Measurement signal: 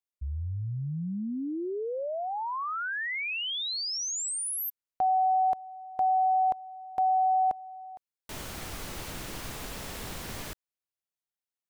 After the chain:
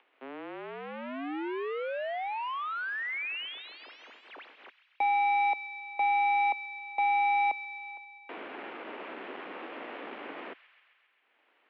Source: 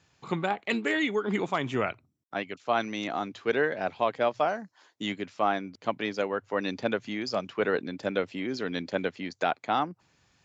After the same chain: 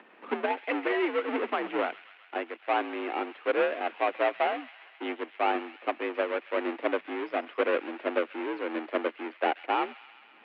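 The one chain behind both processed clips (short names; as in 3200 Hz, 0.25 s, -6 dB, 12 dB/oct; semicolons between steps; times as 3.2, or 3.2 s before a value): half-waves squared off; upward compressor 4:1, threshold -41 dBFS; on a send: thin delay 0.133 s, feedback 71%, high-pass 2000 Hz, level -12 dB; on the sum: mistuned SSB +61 Hz 220–2800 Hz; gain -4 dB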